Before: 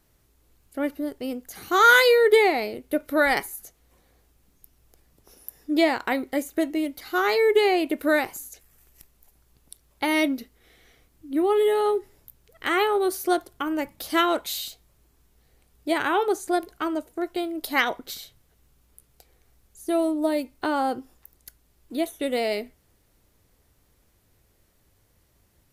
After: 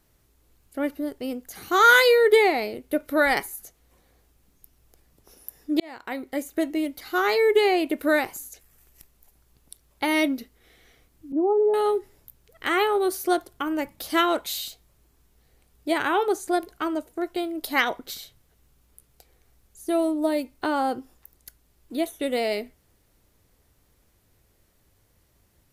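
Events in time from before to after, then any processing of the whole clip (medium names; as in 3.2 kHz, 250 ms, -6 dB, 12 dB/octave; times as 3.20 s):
5.80–6.90 s: fade in equal-power
11.32–11.74 s: Chebyshev band-pass 200–890 Hz, order 3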